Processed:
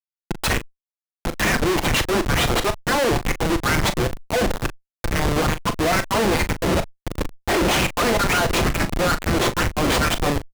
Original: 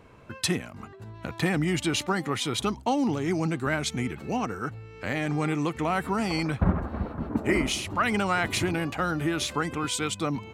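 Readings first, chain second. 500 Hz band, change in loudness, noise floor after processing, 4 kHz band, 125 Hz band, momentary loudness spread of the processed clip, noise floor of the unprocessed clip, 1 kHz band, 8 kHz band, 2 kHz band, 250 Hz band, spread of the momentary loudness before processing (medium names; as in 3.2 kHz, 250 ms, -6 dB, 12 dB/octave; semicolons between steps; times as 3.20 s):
+8.5 dB, +6.5 dB, under -85 dBFS, +8.0 dB, +5.5 dB, 8 LU, -46 dBFS, +7.0 dB, +7.5 dB, +8.0 dB, +3.0 dB, 8 LU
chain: comb filter that takes the minimum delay 5.8 ms; LFO high-pass sine 2.2 Hz 350–2200 Hz; Schmitt trigger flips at -29 dBFS; Chebyshev shaper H 5 -8 dB, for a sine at -24 dBFS; doubling 39 ms -11 dB; trim +8.5 dB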